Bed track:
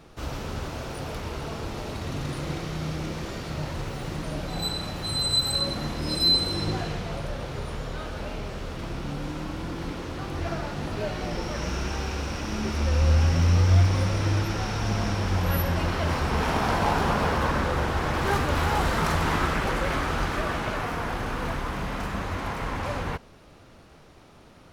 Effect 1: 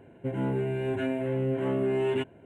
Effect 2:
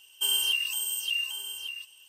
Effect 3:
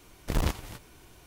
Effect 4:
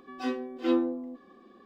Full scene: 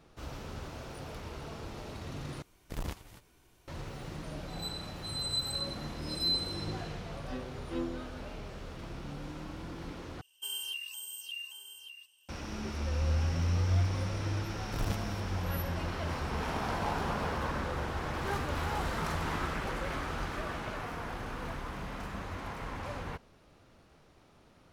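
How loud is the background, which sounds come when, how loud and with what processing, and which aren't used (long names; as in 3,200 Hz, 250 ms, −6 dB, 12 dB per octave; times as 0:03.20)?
bed track −9.5 dB
0:02.42: overwrite with 3 −10.5 dB
0:07.07: mix in 4 −11 dB
0:10.21: overwrite with 2 −12 dB
0:14.44: mix in 3 −8.5 dB
not used: 1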